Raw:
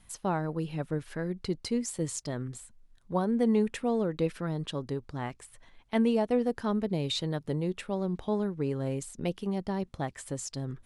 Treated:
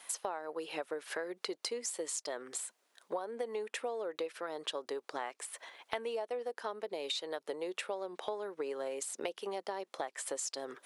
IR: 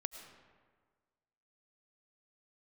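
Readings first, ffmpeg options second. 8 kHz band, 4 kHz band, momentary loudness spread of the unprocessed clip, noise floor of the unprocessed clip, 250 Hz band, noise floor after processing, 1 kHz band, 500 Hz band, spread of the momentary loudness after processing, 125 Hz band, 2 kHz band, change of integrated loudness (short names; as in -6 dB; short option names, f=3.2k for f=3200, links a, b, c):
+1.5 dB, -1.5 dB, 10 LU, -60 dBFS, -19.0 dB, -78 dBFS, -4.0 dB, -5.5 dB, 4 LU, under -30 dB, -1.0 dB, -8.0 dB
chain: -af "highpass=f=440:w=0.5412,highpass=f=440:w=1.3066,acompressor=threshold=-46dB:ratio=10,volume=11dB"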